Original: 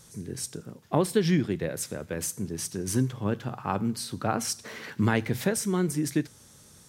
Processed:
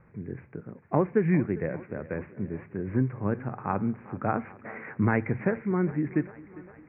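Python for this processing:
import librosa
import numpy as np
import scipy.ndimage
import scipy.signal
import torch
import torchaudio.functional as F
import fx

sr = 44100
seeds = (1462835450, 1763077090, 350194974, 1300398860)

y = scipy.signal.sosfilt(scipy.signal.butter(16, 2400.0, 'lowpass', fs=sr, output='sos'), x)
y = fx.echo_thinned(y, sr, ms=402, feedback_pct=66, hz=170.0, wet_db=-18)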